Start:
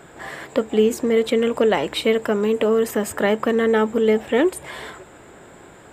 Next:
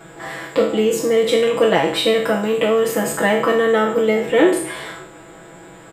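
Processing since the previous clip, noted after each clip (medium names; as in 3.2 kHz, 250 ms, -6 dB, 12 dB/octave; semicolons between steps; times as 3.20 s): spectral sustain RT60 0.61 s; comb 6.1 ms, depth 100%; trim -1 dB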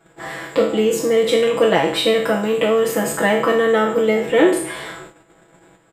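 gate -38 dBFS, range -15 dB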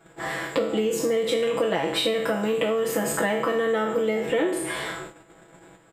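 compression, threshold -21 dBFS, peak gain reduction 11.5 dB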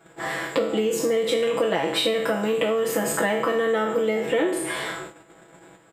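bass shelf 82 Hz -9.5 dB; trim +1.5 dB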